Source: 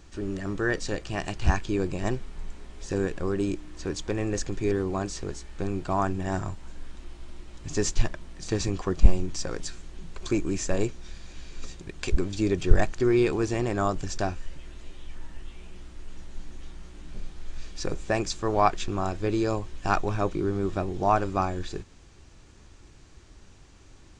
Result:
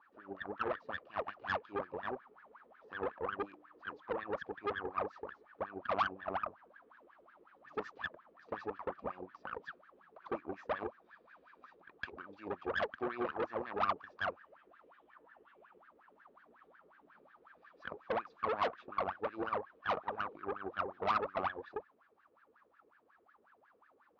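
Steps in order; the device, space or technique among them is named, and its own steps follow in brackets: wah-wah guitar rig (wah 5.5 Hz 420–1700 Hz, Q 16; tube stage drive 42 dB, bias 0.8; speaker cabinet 94–4400 Hz, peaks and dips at 120 Hz -8 dB, 240 Hz +6 dB, 400 Hz -5 dB, 1200 Hz +7 dB); gain +12 dB

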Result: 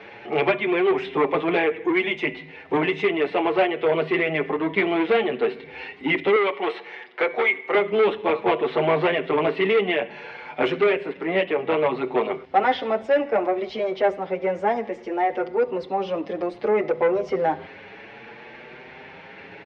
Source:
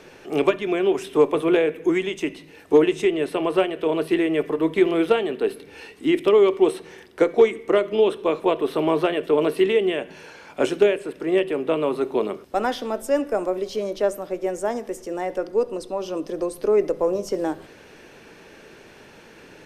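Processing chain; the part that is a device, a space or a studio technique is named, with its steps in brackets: barber-pole flanger into a guitar amplifier (endless flanger 6.8 ms +0.61 Hz; soft clip -20 dBFS, distortion -10 dB; speaker cabinet 81–3700 Hz, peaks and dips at 310 Hz -5 dB, 810 Hz +7 dB, 2100 Hz +9 dB); 6.36–7.75 weighting filter A; gain +6 dB

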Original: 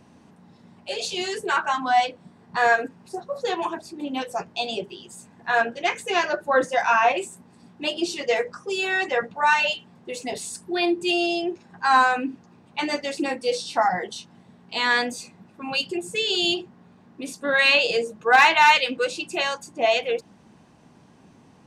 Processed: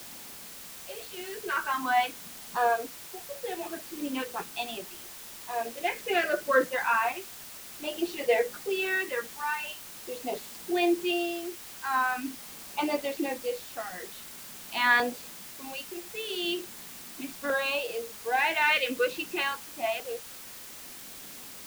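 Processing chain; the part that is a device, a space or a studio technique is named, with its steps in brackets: shortwave radio (BPF 260–2600 Hz; tremolo 0.47 Hz, depth 72%; LFO notch saw down 0.4 Hz 420–2200 Hz; white noise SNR 13 dB)

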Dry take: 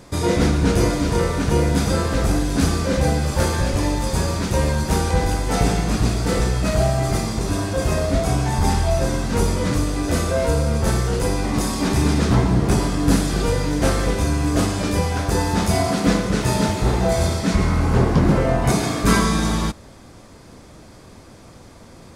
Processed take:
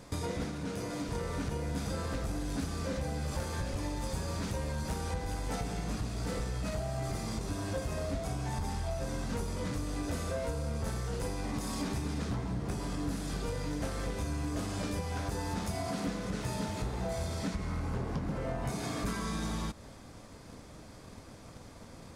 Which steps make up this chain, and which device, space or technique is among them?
drum-bus smash (transient shaper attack +6 dB, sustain +1 dB; compressor 6:1, threshold -23 dBFS, peak gain reduction 14.5 dB; soft clip -19 dBFS, distortion -18 dB); 0.45–1.09 HPF 120 Hz 12 dB/oct; notch 360 Hz, Q 12; gain -7 dB

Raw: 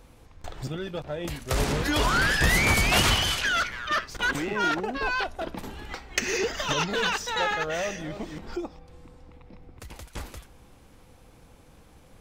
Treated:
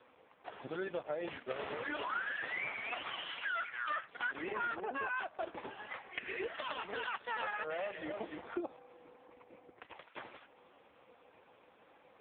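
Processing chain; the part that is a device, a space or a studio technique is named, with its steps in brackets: voicemail (BPF 440–3300 Hz; compressor 12:1, threshold -34 dBFS, peak gain reduction 15 dB; gain +1.5 dB; AMR-NB 4.75 kbps 8000 Hz)

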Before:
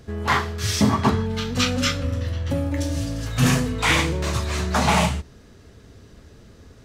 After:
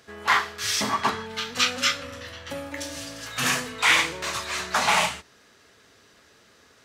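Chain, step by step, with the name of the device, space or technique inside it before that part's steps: filter by subtraction (in parallel: LPF 1600 Hz 12 dB/oct + phase invert)

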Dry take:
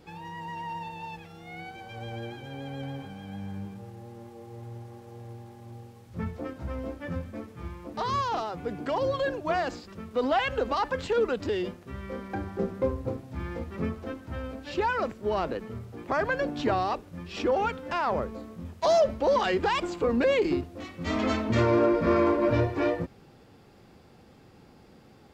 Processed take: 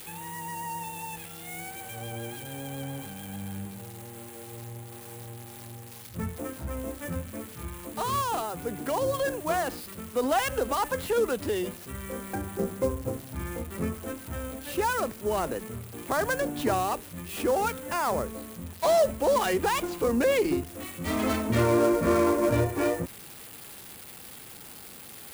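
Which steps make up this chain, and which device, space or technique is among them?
budget class-D amplifier (switching dead time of 0.089 ms; switching spikes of -27.5 dBFS)

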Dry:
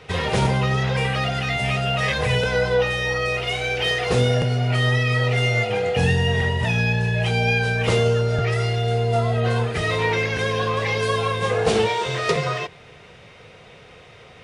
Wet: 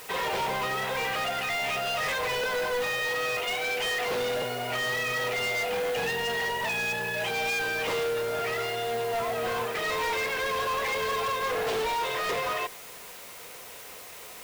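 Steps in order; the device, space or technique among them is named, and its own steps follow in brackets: drive-through speaker (BPF 420–3800 Hz; bell 1000 Hz +6 dB 0.22 oct; hard clip -25 dBFS, distortion -9 dB; white noise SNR 16 dB); gain -1.5 dB

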